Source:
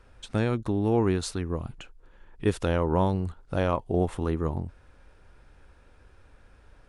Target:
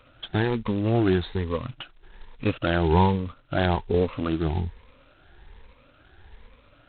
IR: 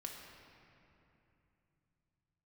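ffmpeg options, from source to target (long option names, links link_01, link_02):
-af "afftfilt=real='re*pow(10,17/40*sin(2*PI*(0.91*log(max(b,1)*sr/1024/100)/log(2)-(1.2)*(pts-256)/sr)))':imag='im*pow(10,17/40*sin(2*PI*(0.91*log(max(b,1)*sr/1024/100)/log(2)-(1.2)*(pts-256)/sr)))':win_size=1024:overlap=0.75" -ar 8000 -c:a adpcm_g726 -b:a 16k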